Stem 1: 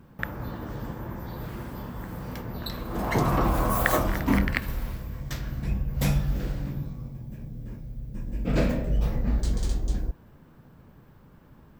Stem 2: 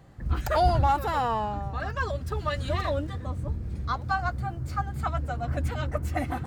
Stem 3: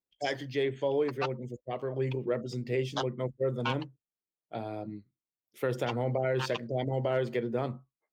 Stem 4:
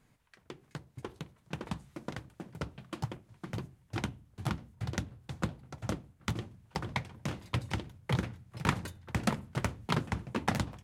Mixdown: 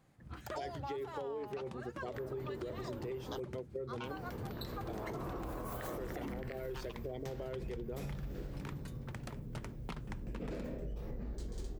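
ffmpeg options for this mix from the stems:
-filter_complex "[0:a]adelay=1950,volume=0.447,asplit=3[s0][s1][s2];[s0]atrim=end=3.4,asetpts=PTS-STARTPTS,afade=t=out:st=3.396:d=0.004:c=hsin[s3];[s1]atrim=start=3.4:end=4.05,asetpts=PTS-STARTPTS,volume=0[s4];[s2]atrim=start=4.05,asetpts=PTS-STARTPTS,afade=t=in:d=0.004:c=hsin[s5];[s3][s4][s5]concat=n=3:v=0:a=1[s6];[1:a]highpass=110,volume=0.158[s7];[2:a]highshelf=f=9900:g=12,alimiter=level_in=1.12:limit=0.0631:level=0:latency=1:release=449,volume=0.891,adelay=350,volume=0.841[s8];[3:a]acompressor=threshold=0.00891:ratio=2.5,volume=0.596[s9];[s6][s8]amix=inputs=2:normalize=0,equalizer=f=400:w=1.9:g=9.5,alimiter=limit=0.0631:level=0:latency=1:release=49,volume=1[s10];[s7][s9]amix=inputs=2:normalize=0,dynaudnorm=f=210:g=5:m=1.88,alimiter=level_in=1.33:limit=0.0631:level=0:latency=1:release=308,volume=0.75,volume=1[s11];[s10][s11]amix=inputs=2:normalize=0,acompressor=threshold=0.0112:ratio=5"

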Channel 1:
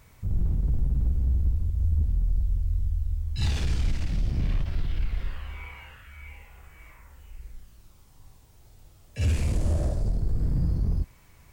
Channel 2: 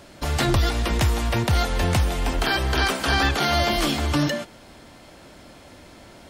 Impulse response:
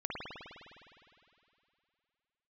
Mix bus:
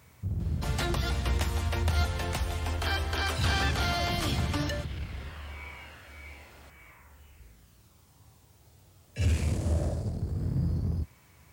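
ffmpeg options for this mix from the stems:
-filter_complex "[0:a]highpass=f=70:w=0.5412,highpass=f=70:w=1.3066,volume=0.944[s0];[1:a]lowshelf=f=200:g=-11.5,volume=6.31,asoftclip=hard,volume=0.158,adelay=400,volume=0.398[s1];[s0][s1]amix=inputs=2:normalize=0"

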